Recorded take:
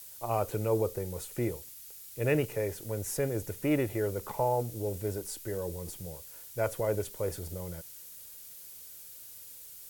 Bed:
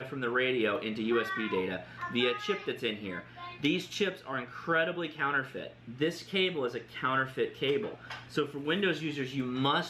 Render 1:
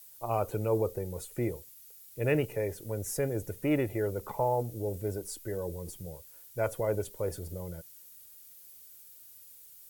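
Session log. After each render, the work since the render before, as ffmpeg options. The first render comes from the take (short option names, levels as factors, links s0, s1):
-af "afftdn=nr=8:nf=-49"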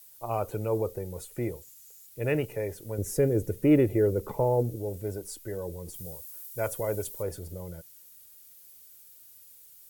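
-filter_complex "[0:a]asettb=1/sr,asplit=3[s0][s1][s2];[s0]atrim=end=1.614[s3];[s1]atrim=start=1.61:end=2.07,asetpts=PTS-STARTPTS,afade=t=in:d=0.004:c=qsin,afade=t=out:st=0.456:d=0.004:c=qsin,equalizer=f=7000:w=2.9:g=9[s4];[s2]atrim=start=2.066[s5];[s3][s4]acrossfade=d=0.004:c1=hsin:c2=qsin[s6];[s6][s5]acrossfade=d=0.004:c1=qsin:c2=hsin,asettb=1/sr,asplit=3[s7][s8][s9];[s7]atrim=end=2.984[s10];[s8]atrim=start=2.98:end=4.76,asetpts=PTS-STARTPTS,afade=t=in:d=0.004:c=qsin,afade=t=out:st=1.776:d=0.004:c=qsin,lowshelf=f=570:t=q:w=1.5:g=6.5[s11];[s9]atrim=start=4.756[s12];[s10][s11]acrossfade=d=0.004:c1=hsin:c2=qsin[s13];[s13][s12]acrossfade=d=0.004:c1=qsin:c2=hsin,asettb=1/sr,asplit=3[s14][s15][s16];[s14]atrim=end=5.944[s17];[s15]atrim=start=5.94:end=7.23,asetpts=PTS-STARTPTS,afade=t=in:d=0.004:c=qsin,afade=t=out:st=1.286:d=0.004:c=qsin,aemphasis=mode=production:type=cd[s18];[s16]atrim=start=7.226[s19];[s17][s18]acrossfade=d=0.004:c1=hsin:c2=qsin[s20];[s20][s19]acrossfade=d=0.004:c1=qsin:c2=hsin"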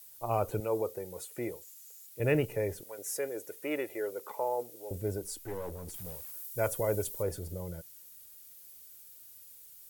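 -filter_complex "[0:a]asettb=1/sr,asplit=3[s0][s1][s2];[s0]atrim=end=0.604[s3];[s1]atrim=start=0.6:end=2.2,asetpts=PTS-STARTPTS,afade=t=in:d=0.004:c=qsin,afade=t=out:st=1.596:d=0.004:c=qsin,highpass=f=430:p=1[s4];[s2]atrim=start=2.196[s5];[s3][s4]acrossfade=d=0.004:c1=hsin:c2=qsin[s6];[s6][s5]acrossfade=d=0.004:c1=qsin:c2=hsin,asettb=1/sr,asplit=3[s7][s8][s9];[s7]atrim=end=2.834[s10];[s8]atrim=start=2.83:end=4.91,asetpts=PTS-STARTPTS,afade=t=in:d=0.004:c=qsin,afade=t=out:st=2.076:d=0.004:c=qsin,highpass=780[s11];[s9]atrim=start=4.906[s12];[s10][s11]acrossfade=d=0.004:c1=hsin:c2=qsin[s13];[s13][s12]acrossfade=d=0.004:c1=qsin:c2=hsin,asettb=1/sr,asplit=3[s14][s15][s16];[s14]atrim=end=5.434[s17];[s15]atrim=start=5.43:end=6.32,asetpts=PTS-STARTPTS,afade=t=in:d=0.004:c=qsin,afade=t=out:st=0.886:d=0.004:c=qsin,aeval=exprs='clip(val(0),-1,0.00841)':c=same[s18];[s16]atrim=start=6.316[s19];[s17][s18]acrossfade=d=0.004:c1=hsin:c2=qsin[s20];[s20][s19]acrossfade=d=0.004:c1=qsin:c2=hsin"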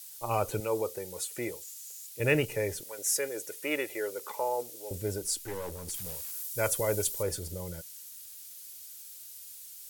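-af "equalizer=f=5500:w=0.32:g=11,bandreject=f=690:w=12"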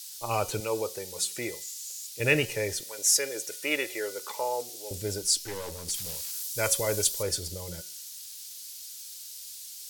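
-af "equalizer=f=4700:t=o:w=1.8:g=11,bandreject=f=183.2:t=h:w=4,bandreject=f=366.4:t=h:w=4,bandreject=f=549.6:t=h:w=4,bandreject=f=732.8:t=h:w=4,bandreject=f=916:t=h:w=4,bandreject=f=1099.2:t=h:w=4,bandreject=f=1282.4:t=h:w=4,bandreject=f=1465.6:t=h:w=4,bandreject=f=1648.8:t=h:w=4,bandreject=f=1832:t=h:w=4,bandreject=f=2015.2:t=h:w=4,bandreject=f=2198.4:t=h:w=4,bandreject=f=2381.6:t=h:w=4,bandreject=f=2564.8:t=h:w=4,bandreject=f=2748:t=h:w=4,bandreject=f=2931.2:t=h:w=4,bandreject=f=3114.4:t=h:w=4,bandreject=f=3297.6:t=h:w=4,bandreject=f=3480.8:t=h:w=4,bandreject=f=3664:t=h:w=4,bandreject=f=3847.2:t=h:w=4,bandreject=f=4030.4:t=h:w=4,bandreject=f=4213.6:t=h:w=4,bandreject=f=4396.8:t=h:w=4,bandreject=f=4580:t=h:w=4,bandreject=f=4763.2:t=h:w=4,bandreject=f=4946.4:t=h:w=4,bandreject=f=5129.6:t=h:w=4,bandreject=f=5312.8:t=h:w=4,bandreject=f=5496:t=h:w=4,bandreject=f=5679.2:t=h:w=4,bandreject=f=5862.4:t=h:w=4,bandreject=f=6045.6:t=h:w=4,bandreject=f=6228.8:t=h:w=4,bandreject=f=6412:t=h:w=4"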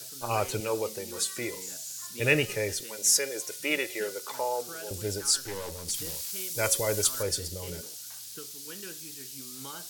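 -filter_complex "[1:a]volume=0.158[s0];[0:a][s0]amix=inputs=2:normalize=0"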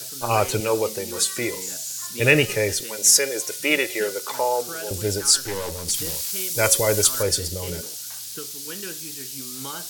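-af "volume=2.51,alimiter=limit=0.794:level=0:latency=1"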